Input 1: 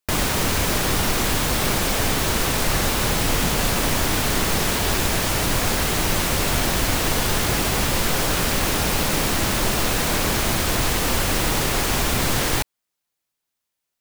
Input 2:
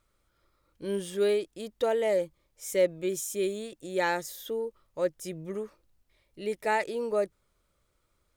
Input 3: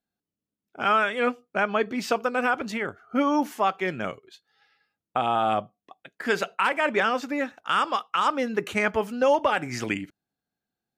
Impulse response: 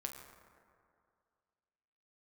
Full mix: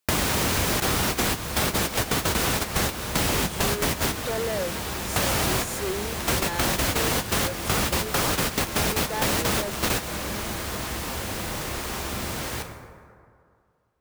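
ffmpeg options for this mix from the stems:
-filter_complex "[0:a]highpass=50,volume=1.5dB,asplit=2[link_01][link_02];[link_02]volume=-9.5dB[link_03];[1:a]asoftclip=type=tanh:threshold=-29dB,adelay=2450,volume=3dB[link_04];[2:a]acrusher=bits=3:mix=0:aa=0.000001,acrossover=split=490|1000[link_05][link_06][link_07];[link_05]acompressor=threshold=-36dB:ratio=4[link_08];[link_06]acompressor=threshold=-37dB:ratio=4[link_09];[link_07]acompressor=threshold=-30dB:ratio=4[link_10];[link_08][link_09][link_10]amix=inputs=3:normalize=0,volume=-2dB,asplit=2[link_11][link_12];[link_12]apad=whole_len=617618[link_13];[link_01][link_13]sidechaingate=range=-33dB:threshold=-35dB:ratio=16:detection=peak[link_14];[3:a]atrim=start_sample=2205[link_15];[link_03][link_15]afir=irnorm=-1:irlink=0[link_16];[link_14][link_04][link_11][link_16]amix=inputs=4:normalize=0,acompressor=threshold=-21dB:ratio=4"

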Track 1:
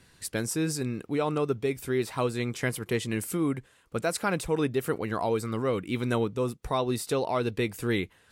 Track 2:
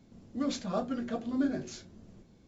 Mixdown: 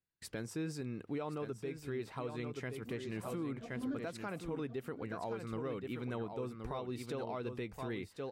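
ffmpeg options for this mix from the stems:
ffmpeg -i stem1.wav -i stem2.wav -filter_complex "[0:a]bandreject=frequency=50:width_type=h:width=6,bandreject=frequency=100:width_type=h:width=6,volume=-4.5dB,asplit=3[link_01][link_02][link_03];[link_02]volume=-7.5dB[link_04];[1:a]adelay=2500,volume=2dB,asplit=2[link_05][link_06];[link_06]volume=-19.5dB[link_07];[link_03]apad=whole_len=219258[link_08];[link_05][link_08]sidechaincompress=threshold=-45dB:ratio=8:attack=16:release=488[link_09];[link_04][link_07]amix=inputs=2:normalize=0,aecho=0:1:1072:1[link_10];[link_01][link_09][link_10]amix=inputs=3:normalize=0,equalizer=frequency=11000:width=0.5:gain=-12.5,agate=range=-32dB:threshold=-59dB:ratio=16:detection=peak,alimiter=level_in=7dB:limit=-24dB:level=0:latency=1:release=400,volume=-7dB" out.wav

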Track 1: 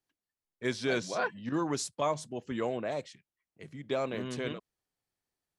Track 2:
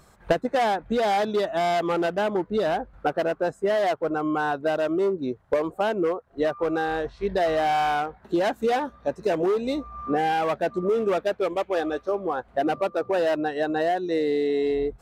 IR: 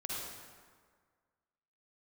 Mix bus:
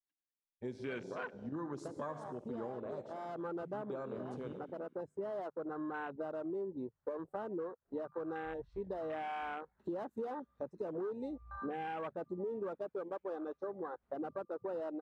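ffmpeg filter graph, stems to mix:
-filter_complex "[0:a]volume=-2dB,asplit=3[link_01][link_02][link_03];[link_02]volume=-8.5dB[link_04];[1:a]bandreject=frequency=50:width_type=h:width=6,bandreject=frequency=100:width_type=h:width=6,bandreject=frequency=150:width_type=h:width=6,adelay=1550,volume=-4.5dB[link_05];[link_03]apad=whole_len=730356[link_06];[link_05][link_06]sidechaincompress=threshold=-39dB:ratio=8:attack=7.3:release=984[link_07];[2:a]atrim=start_sample=2205[link_08];[link_04][link_08]afir=irnorm=-1:irlink=0[link_09];[link_01][link_07][link_09]amix=inputs=3:normalize=0,afwtdn=0.02,equalizer=frequency=700:width_type=o:width=0.26:gain=-7.5,acompressor=threshold=-43dB:ratio=2.5"

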